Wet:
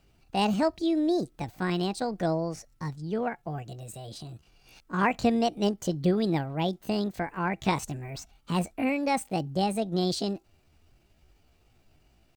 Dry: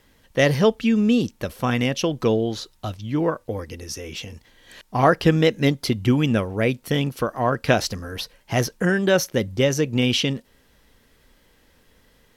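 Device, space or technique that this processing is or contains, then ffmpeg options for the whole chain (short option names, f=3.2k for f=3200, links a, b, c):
chipmunk voice: -af "asetrate=64194,aresample=44100,atempo=0.686977,bass=f=250:g=7,treble=f=4k:g=-3,volume=-9dB"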